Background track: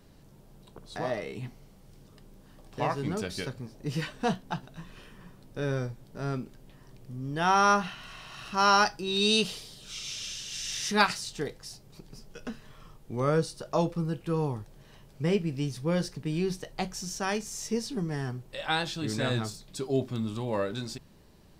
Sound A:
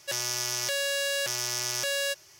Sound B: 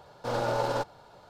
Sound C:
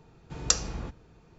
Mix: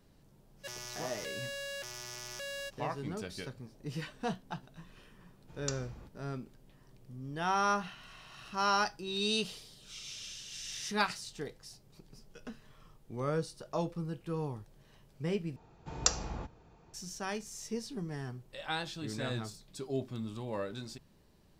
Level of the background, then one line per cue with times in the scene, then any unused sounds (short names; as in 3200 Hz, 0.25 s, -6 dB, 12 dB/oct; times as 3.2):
background track -7.5 dB
0.56 add A -10.5 dB, fades 0.05 s + high shelf 4100 Hz -6.5 dB
5.18 add C -15 dB
15.56 replace with C -4.5 dB + bell 810 Hz +7 dB 0.9 oct
not used: B